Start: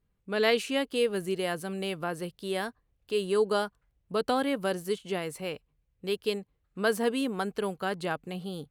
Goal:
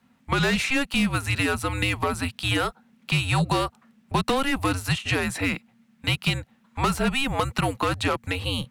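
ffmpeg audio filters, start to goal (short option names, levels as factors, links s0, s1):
-filter_complex "[0:a]afreqshift=-270,asplit=2[s0][s1];[s1]highpass=f=720:p=1,volume=12.6,asoftclip=type=tanh:threshold=0.316[s2];[s0][s2]amix=inputs=2:normalize=0,lowpass=f=2900:p=1,volume=0.501,acrossover=split=150|5300[s3][s4][s5];[s3]acompressor=threshold=0.0178:ratio=4[s6];[s4]acompressor=threshold=0.0316:ratio=4[s7];[s5]acompressor=threshold=0.00708:ratio=4[s8];[s6][s7][s8]amix=inputs=3:normalize=0,volume=2.24"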